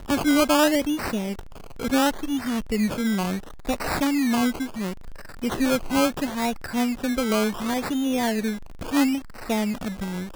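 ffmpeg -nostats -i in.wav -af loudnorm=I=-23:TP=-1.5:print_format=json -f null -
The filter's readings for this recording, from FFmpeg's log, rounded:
"input_i" : "-24.8",
"input_tp" : "-8.7",
"input_lra" : "2.8",
"input_thresh" : "-35.0",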